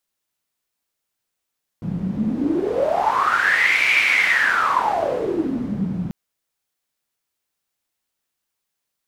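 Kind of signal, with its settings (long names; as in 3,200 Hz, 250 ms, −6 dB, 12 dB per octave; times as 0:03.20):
wind from filtered noise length 4.29 s, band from 170 Hz, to 2,300 Hz, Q 11, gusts 1, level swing 6.5 dB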